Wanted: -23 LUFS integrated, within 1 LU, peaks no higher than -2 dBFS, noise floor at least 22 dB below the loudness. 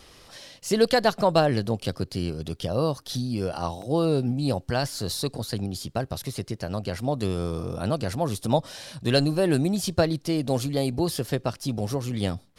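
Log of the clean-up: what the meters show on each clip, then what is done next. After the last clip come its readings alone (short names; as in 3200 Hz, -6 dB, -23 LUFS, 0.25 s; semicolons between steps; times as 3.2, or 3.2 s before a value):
dropouts 2; longest dropout 1.4 ms; loudness -26.5 LUFS; peak -8.0 dBFS; loudness target -23.0 LUFS
-> interpolate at 3.82/8.9, 1.4 ms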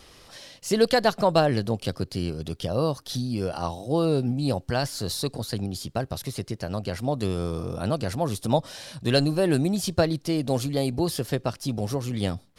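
dropouts 0; loudness -26.5 LUFS; peak -8.0 dBFS; loudness target -23.0 LUFS
-> gain +3.5 dB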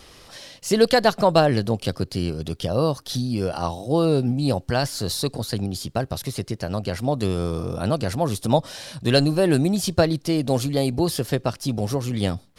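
loudness -23.0 LUFS; peak -4.5 dBFS; noise floor -51 dBFS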